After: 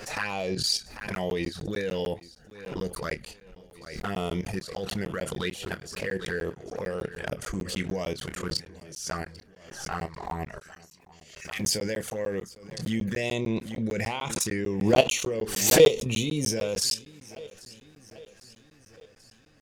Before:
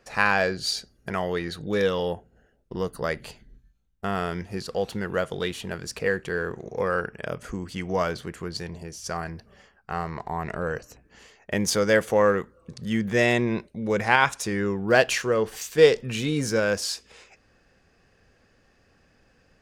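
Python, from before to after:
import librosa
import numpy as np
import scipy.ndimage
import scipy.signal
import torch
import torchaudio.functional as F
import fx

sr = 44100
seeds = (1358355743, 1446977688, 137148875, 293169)

y = fx.steep_highpass(x, sr, hz=2100.0, slope=36, at=(10.58, 11.59), fade=0.02)
y = fx.level_steps(y, sr, step_db=16)
y = fx.env_flanger(y, sr, rest_ms=10.0, full_db=-28.0)
y = fx.high_shelf(y, sr, hz=3500.0, db=7.0)
y = fx.doubler(y, sr, ms=27.0, db=-12.5)
y = fx.echo_feedback(y, sr, ms=794, feedback_pct=58, wet_db=-22.0)
y = fx.buffer_crackle(y, sr, first_s=1.0, period_s=0.15, block=512, kind='zero')
y = fx.pre_swell(y, sr, db_per_s=68.0)
y = y * 10.0 ** (4.0 / 20.0)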